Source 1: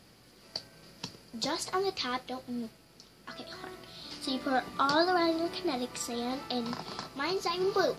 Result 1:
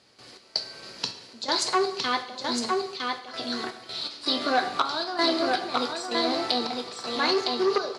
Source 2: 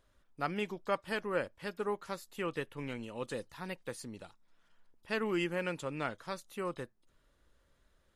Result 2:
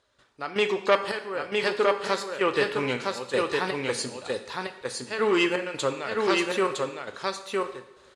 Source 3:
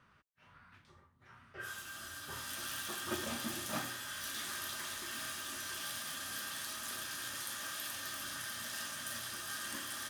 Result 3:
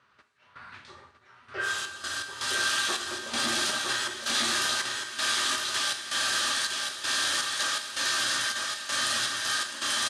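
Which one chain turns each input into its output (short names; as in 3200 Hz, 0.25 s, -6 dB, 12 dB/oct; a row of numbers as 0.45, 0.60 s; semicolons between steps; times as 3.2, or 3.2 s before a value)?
bell 150 Hz -13 dB 1.7 oct; in parallel at -2.5 dB: compressor, threshold -42 dBFS; on the sum: step gate ".x.xxx..xx" 81 bpm -12 dB; speaker cabinet 100–8800 Hz, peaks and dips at 130 Hz +7 dB, 400 Hz +4 dB, 4100 Hz +5 dB; on a send: echo 0.96 s -3.5 dB; on the sum: two-slope reverb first 0.7 s, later 2.2 s, DRR 7.5 dB; core saturation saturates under 1400 Hz; match loudness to -27 LUFS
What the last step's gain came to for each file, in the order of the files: +6.0, +12.0, +10.0 dB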